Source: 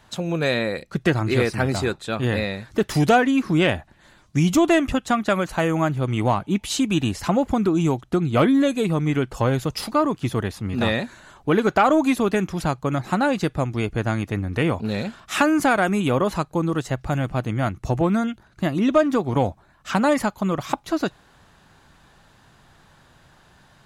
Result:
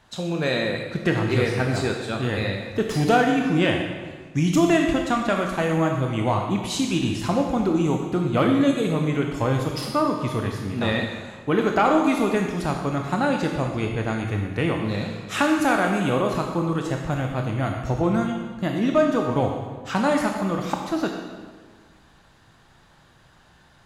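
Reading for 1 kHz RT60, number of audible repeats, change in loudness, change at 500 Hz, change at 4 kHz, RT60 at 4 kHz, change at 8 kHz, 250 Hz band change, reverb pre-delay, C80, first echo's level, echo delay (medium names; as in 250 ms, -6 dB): 1.5 s, no echo, -1.0 dB, -1.0 dB, -0.5 dB, 1.2 s, -2.0 dB, -1.0 dB, 18 ms, 5.0 dB, no echo, no echo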